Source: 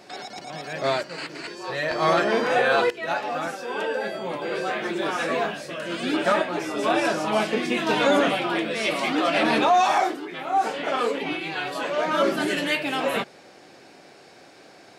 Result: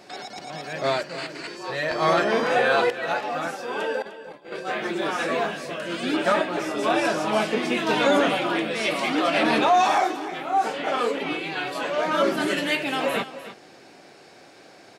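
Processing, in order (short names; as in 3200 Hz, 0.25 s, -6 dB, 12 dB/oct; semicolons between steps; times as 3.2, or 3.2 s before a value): 4.02–4.7 gate -26 dBFS, range -23 dB; echo 0.302 s -14 dB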